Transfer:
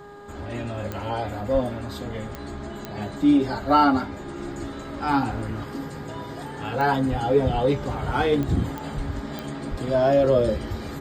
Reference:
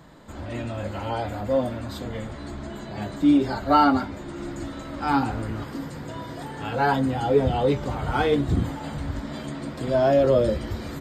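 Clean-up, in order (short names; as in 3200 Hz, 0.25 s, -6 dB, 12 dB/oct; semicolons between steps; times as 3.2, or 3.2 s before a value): de-click; de-hum 408 Hz, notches 4; de-plosive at 1.53/7.1/7.53/8.96/9.7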